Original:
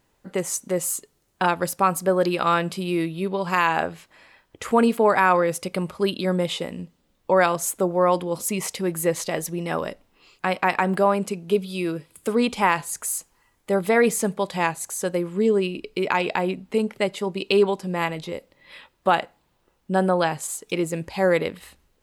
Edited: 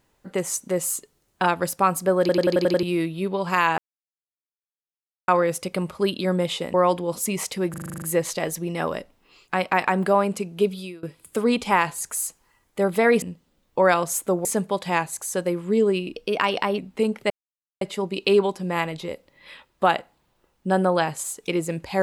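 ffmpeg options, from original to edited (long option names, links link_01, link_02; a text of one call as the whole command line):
ffmpeg -i in.wav -filter_complex "[0:a]asplit=25[link_01][link_02][link_03][link_04][link_05][link_06][link_07][link_08][link_09][link_10][link_11][link_12][link_13][link_14][link_15][link_16][link_17][link_18][link_19][link_20][link_21][link_22][link_23][link_24][link_25];[link_01]atrim=end=2.292[link_26];[link_02]atrim=start=2.198:end=2.292[link_27];[link_03]atrim=start=2.198:end=2.292[link_28];[link_04]atrim=start=2.198:end=2.292[link_29];[link_05]atrim=start=2.198:end=2.292[link_30];[link_06]atrim=start=2.198:end=2.292[link_31];[link_07]atrim=start=2.198:end=2.292[link_32];[link_08]atrim=start=2.828:end=3.78,asetpts=PTS-STARTPTS,afade=type=out:start_time=0.948:duration=0.004:curve=hsin[link_33];[link_09]atrim=start=3.78:end=5.28,asetpts=PTS-STARTPTS,volume=0[link_34];[link_10]atrim=start=5.28:end=6.742,asetpts=PTS-STARTPTS,afade=type=in:duration=0.004:curve=hsin[link_35];[link_11]atrim=start=7.968:end=8.972[link_36];[link_12]atrim=start=8.928:end=8.972[link_37];[link_13]atrim=start=8.928:end=8.972[link_38];[link_14]atrim=start=8.928:end=8.972[link_39];[link_15]atrim=start=8.928:end=8.972[link_40];[link_16]atrim=start=8.928:end=8.972[link_41];[link_17]atrim=start=8.928:end=8.972[link_42];[link_18]atrim=start=8.928:end=8.972[link_43];[link_19]atrim=start=8.928:end=11.94,asetpts=PTS-STARTPTS,afade=type=out:start_time=2.762:duration=0.25:curve=qua:silence=0.0794328[link_44];[link_20]atrim=start=11.94:end=14.132,asetpts=PTS-STARTPTS,afade=type=in:duration=0.004:curve=hsin:silence=0.0794328[link_45];[link_21]atrim=start=6.738:end=7.972[link_46];[link_22]atrim=start=14.128:end=15.844[link_47];[link_23]atrim=start=15.84:end=16.53,asetpts=PTS-STARTPTS,asetrate=48951,aresample=44100[link_48];[link_24]atrim=start=16.526:end=17.05,asetpts=PTS-STARTPTS,afade=type=out:start_time=0.52:duration=0.004:curve=hsin,apad=pad_dur=0.51[link_49];[link_25]atrim=start=17.05,asetpts=PTS-STARTPTS,afade=type=in:duration=0.004:curve=hsin[link_50];[link_26][link_27]acrossfade=duration=0.004:curve1=hsin:curve2=hsin[link_51];[link_51][link_28]acrossfade=duration=0.004:curve1=hsin:curve2=hsin[link_52];[link_52][link_29]acrossfade=duration=0.004:curve1=hsin:curve2=hsin[link_53];[link_53][link_30]acrossfade=duration=0.004:curve1=hsin:curve2=hsin[link_54];[link_54][link_31]acrossfade=duration=0.004:curve1=hsin:curve2=hsin[link_55];[link_55][link_32]acrossfade=duration=0.004:curve1=hsin:curve2=hsin[link_56];[link_33][link_34][link_35]concat=n=3:v=0:a=1[link_57];[link_56][link_57]acrossfade=duration=0.004:curve1=hsin:curve2=hsin[link_58];[link_58][link_36]acrossfade=duration=0.004:curve1=hsin:curve2=hsin[link_59];[link_59][link_37]acrossfade=duration=0.004:curve1=hsin:curve2=hsin[link_60];[link_60][link_38]acrossfade=duration=0.004:curve1=hsin:curve2=hsin[link_61];[link_61][link_39]acrossfade=duration=0.004:curve1=hsin:curve2=hsin[link_62];[link_62][link_40]acrossfade=duration=0.004:curve1=hsin:curve2=hsin[link_63];[link_63][link_41]acrossfade=duration=0.004:curve1=hsin:curve2=hsin[link_64];[link_64][link_42]acrossfade=duration=0.004:curve1=hsin:curve2=hsin[link_65];[link_65][link_43]acrossfade=duration=0.004:curve1=hsin:curve2=hsin[link_66];[link_44][link_45]concat=n=2:v=0:a=1[link_67];[link_66][link_67]acrossfade=duration=0.004:curve1=hsin:curve2=hsin[link_68];[link_68][link_46]acrossfade=duration=0.004:curve1=hsin:curve2=hsin[link_69];[link_69][link_47]acrossfade=duration=0.004:curve1=hsin:curve2=hsin[link_70];[link_70][link_48]acrossfade=duration=0.004:curve1=hsin:curve2=hsin[link_71];[link_49][link_50]concat=n=2:v=0:a=1[link_72];[link_71][link_72]acrossfade=duration=0.004:curve1=hsin:curve2=hsin" out.wav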